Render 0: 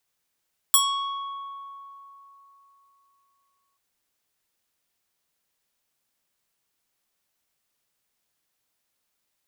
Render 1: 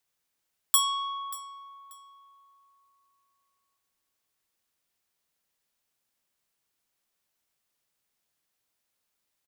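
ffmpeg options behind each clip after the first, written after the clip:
-af "aecho=1:1:585|1170:0.126|0.029,volume=-3dB"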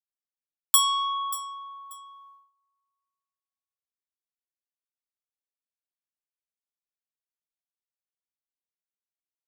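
-af "afftdn=nr=13:nf=-53,agate=range=-20dB:threshold=-59dB:ratio=16:detection=peak,alimiter=limit=-10dB:level=0:latency=1:release=488,volume=6.5dB"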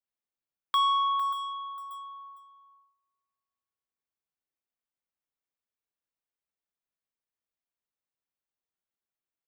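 -filter_complex "[0:a]equalizer=f=9.7k:t=o:w=2.1:g=-14,asplit=2[a][b];[b]adelay=454.8,volume=-10dB,highshelf=f=4k:g=-10.2[c];[a][c]amix=inputs=2:normalize=0,acrossover=split=3800[d][e];[e]acompressor=threshold=-52dB:ratio=4:attack=1:release=60[f];[d][f]amix=inputs=2:normalize=0,volume=3dB"

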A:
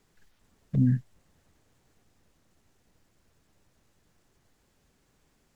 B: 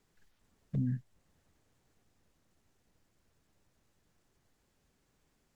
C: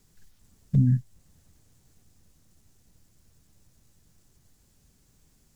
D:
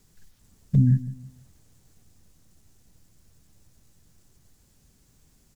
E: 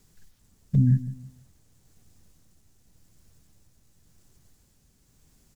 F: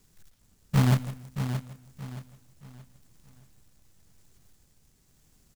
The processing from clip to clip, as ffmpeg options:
-af "alimiter=limit=-19dB:level=0:latency=1:release=479,volume=-6dB"
-af "bass=f=250:g=11,treble=f=4k:g=12,volume=3dB"
-filter_complex "[0:a]asplit=2[a][b];[b]adelay=163,lowpass=f=2k:p=1,volume=-15.5dB,asplit=2[c][d];[d]adelay=163,lowpass=f=2k:p=1,volume=0.33,asplit=2[e][f];[f]adelay=163,lowpass=f=2k:p=1,volume=0.33[g];[a][c][e][g]amix=inputs=4:normalize=0,volume=2dB"
-af "tremolo=f=0.92:d=0.31"
-af "acrusher=bits=2:mode=log:mix=0:aa=0.000001,aecho=1:1:624|1248|1872|2496:0.355|0.121|0.041|0.0139,volume=-2.5dB"

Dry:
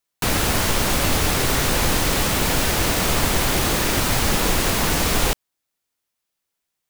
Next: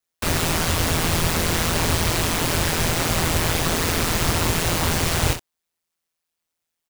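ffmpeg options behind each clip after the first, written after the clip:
-af "equalizer=f=14k:t=o:w=0.3:g=-3,aecho=1:1:26|63:0.562|0.299,aeval=exprs='val(0)*sin(2*PI*83*n/s)':c=same"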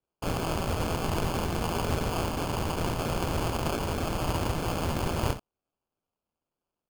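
-af "acrusher=samples=23:mix=1:aa=0.000001,volume=-8dB"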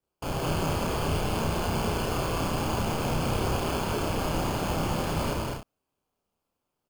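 -filter_complex "[0:a]asoftclip=type=tanh:threshold=-29dB,asplit=2[a][b];[b]adelay=31,volume=-2.5dB[c];[a][c]amix=inputs=2:normalize=0,asplit=2[d][e];[e]aecho=0:1:75.8|204.1:0.282|0.891[f];[d][f]amix=inputs=2:normalize=0,volume=1.5dB"

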